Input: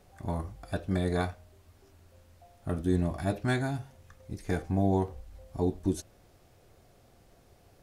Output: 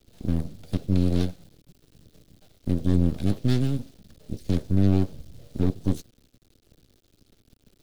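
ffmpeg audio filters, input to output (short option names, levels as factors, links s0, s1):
-filter_complex "[0:a]aeval=exprs='0.2*(cos(1*acos(clip(val(0)/0.2,-1,1)))-cos(1*PI/2))+0.00355*(cos(3*acos(clip(val(0)/0.2,-1,1)))-cos(3*PI/2))+0.0316*(cos(4*acos(clip(val(0)/0.2,-1,1)))-cos(4*PI/2))+0.0141*(cos(6*acos(clip(val(0)/0.2,-1,1)))-cos(6*PI/2))+0.0316*(cos(8*acos(clip(val(0)/0.2,-1,1)))-cos(8*PI/2))':c=same,acrusher=bits=8:mix=0:aa=0.000001,acrossover=split=210|550|1900[s0][s1][s2][s3];[s0]acontrast=66[s4];[s4][s1][s2][s3]amix=inputs=4:normalize=0,aeval=exprs='abs(val(0))':c=same,equalizer=f=125:t=o:w=1:g=3,equalizer=f=250:t=o:w=1:g=4,equalizer=f=500:t=o:w=1:g=4,equalizer=f=1000:t=o:w=1:g=-10,equalizer=f=2000:t=o:w=1:g=-5,equalizer=f=4000:t=o:w=1:g=7,volume=0.794"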